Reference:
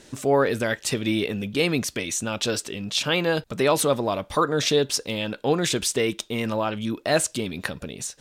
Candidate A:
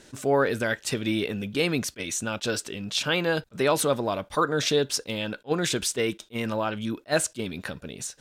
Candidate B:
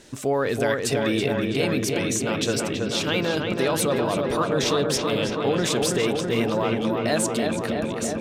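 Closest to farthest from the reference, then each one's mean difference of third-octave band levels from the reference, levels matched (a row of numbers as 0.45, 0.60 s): A, B; 1.5, 7.0 dB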